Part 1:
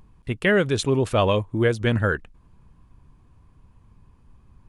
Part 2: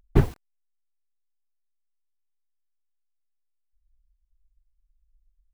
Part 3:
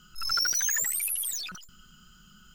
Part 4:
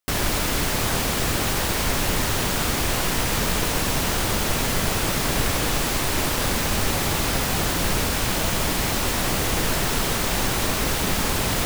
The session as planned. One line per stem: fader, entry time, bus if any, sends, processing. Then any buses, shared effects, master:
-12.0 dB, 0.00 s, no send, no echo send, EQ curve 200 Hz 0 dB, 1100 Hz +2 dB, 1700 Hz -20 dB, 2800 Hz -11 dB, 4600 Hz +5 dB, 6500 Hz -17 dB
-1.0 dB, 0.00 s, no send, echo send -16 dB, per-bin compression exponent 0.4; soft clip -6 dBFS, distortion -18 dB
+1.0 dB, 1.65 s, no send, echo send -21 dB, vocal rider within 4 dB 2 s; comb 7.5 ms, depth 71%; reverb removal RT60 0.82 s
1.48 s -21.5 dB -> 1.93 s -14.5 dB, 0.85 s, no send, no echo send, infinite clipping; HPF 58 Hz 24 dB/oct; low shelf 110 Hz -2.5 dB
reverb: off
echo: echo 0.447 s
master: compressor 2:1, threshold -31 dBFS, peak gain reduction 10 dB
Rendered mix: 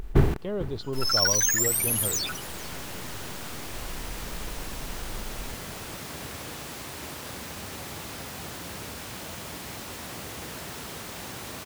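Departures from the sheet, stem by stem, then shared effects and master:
stem 3: entry 1.65 s -> 0.80 s; stem 4: missing infinite clipping; master: missing compressor 2:1, threshold -31 dBFS, peak gain reduction 10 dB

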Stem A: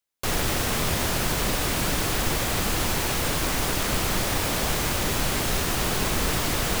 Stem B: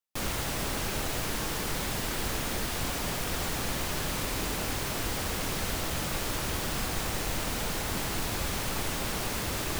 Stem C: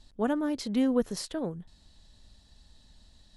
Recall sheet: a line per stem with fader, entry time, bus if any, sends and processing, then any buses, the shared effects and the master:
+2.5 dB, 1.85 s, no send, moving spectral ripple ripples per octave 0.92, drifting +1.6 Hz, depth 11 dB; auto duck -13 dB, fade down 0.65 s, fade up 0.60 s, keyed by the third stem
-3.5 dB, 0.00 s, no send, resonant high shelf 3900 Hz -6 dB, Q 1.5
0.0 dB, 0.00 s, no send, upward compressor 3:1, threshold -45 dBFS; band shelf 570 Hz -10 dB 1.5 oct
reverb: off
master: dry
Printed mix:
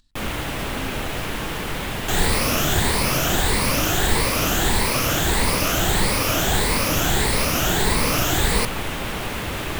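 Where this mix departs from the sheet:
stem B -3.5 dB -> +5.5 dB; stem C 0.0 dB -> -11.0 dB

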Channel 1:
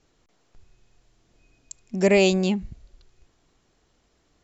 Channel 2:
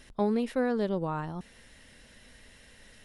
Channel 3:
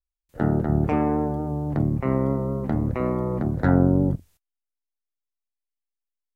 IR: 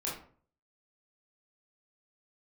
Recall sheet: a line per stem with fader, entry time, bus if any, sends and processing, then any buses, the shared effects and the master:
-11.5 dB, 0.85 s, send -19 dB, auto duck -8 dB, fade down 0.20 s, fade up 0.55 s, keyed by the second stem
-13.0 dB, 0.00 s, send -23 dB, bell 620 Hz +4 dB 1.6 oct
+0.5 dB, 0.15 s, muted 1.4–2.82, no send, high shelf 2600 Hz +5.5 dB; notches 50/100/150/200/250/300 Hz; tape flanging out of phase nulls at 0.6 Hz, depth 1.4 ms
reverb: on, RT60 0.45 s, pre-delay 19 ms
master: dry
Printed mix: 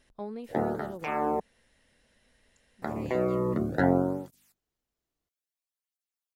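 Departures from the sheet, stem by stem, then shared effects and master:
stem 1 -11.5 dB -> -23.5 dB; stem 2: send off

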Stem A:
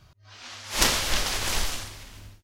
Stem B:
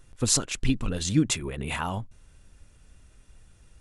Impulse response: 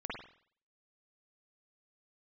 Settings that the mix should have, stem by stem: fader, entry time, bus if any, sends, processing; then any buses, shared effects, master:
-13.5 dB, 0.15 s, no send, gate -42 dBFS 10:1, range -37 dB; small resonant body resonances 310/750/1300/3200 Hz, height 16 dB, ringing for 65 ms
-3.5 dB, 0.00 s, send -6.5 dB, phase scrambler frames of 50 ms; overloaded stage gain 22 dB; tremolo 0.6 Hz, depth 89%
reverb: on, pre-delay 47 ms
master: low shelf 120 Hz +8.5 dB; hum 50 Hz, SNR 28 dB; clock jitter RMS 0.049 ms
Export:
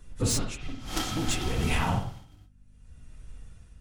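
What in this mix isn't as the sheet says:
stem B: send -6.5 dB -> -0.5 dB; master: missing clock jitter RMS 0.049 ms

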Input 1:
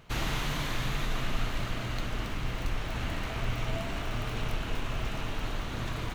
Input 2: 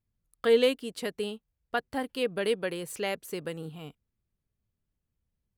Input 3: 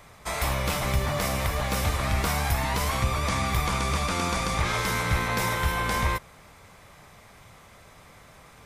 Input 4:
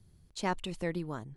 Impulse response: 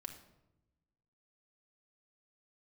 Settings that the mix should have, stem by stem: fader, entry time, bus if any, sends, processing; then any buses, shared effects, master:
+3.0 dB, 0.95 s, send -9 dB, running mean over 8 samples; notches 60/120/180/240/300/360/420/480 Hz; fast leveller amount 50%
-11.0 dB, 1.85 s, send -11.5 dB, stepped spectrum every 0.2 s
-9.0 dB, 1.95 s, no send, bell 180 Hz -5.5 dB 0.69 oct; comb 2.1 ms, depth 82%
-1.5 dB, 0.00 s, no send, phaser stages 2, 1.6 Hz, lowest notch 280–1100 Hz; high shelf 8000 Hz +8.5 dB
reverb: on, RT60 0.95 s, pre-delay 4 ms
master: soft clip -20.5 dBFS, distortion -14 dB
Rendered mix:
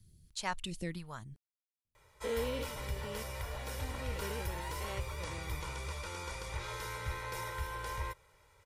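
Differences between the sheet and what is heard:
stem 1: muted; stem 3 -9.0 dB -> -16.5 dB; master: missing soft clip -20.5 dBFS, distortion -14 dB

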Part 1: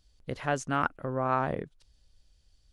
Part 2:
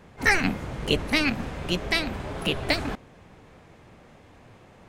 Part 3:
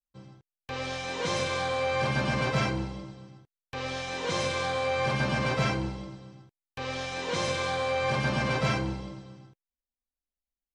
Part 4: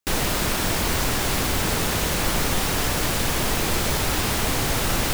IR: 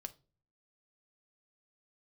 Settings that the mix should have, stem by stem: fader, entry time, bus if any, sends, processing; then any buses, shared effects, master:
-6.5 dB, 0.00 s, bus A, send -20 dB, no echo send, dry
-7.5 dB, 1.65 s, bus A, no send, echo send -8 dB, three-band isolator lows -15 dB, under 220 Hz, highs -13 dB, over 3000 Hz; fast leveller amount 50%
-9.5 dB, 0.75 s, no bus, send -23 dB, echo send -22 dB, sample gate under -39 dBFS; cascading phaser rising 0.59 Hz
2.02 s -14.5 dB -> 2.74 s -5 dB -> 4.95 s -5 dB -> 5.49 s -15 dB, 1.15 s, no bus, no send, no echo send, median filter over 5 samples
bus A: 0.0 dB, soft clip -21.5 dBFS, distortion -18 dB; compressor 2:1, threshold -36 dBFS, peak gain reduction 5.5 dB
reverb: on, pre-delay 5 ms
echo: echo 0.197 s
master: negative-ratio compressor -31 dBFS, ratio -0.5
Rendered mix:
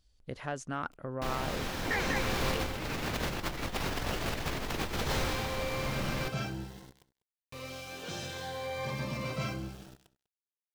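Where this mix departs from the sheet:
stem 2: missing fast leveller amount 50%; reverb return -9.0 dB

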